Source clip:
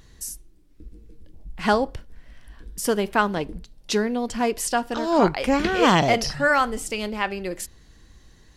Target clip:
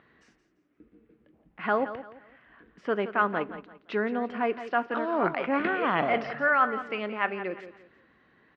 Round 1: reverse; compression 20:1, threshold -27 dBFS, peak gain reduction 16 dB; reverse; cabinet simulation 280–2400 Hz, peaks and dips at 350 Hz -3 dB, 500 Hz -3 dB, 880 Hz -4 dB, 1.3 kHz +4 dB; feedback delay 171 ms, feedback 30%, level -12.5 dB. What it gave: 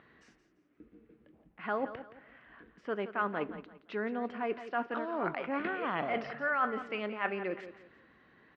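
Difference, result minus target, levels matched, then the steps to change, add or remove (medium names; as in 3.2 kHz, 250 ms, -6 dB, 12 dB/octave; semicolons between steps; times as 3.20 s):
compression: peak gain reduction +8 dB
change: compression 20:1, threshold -18.5 dBFS, peak gain reduction 8 dB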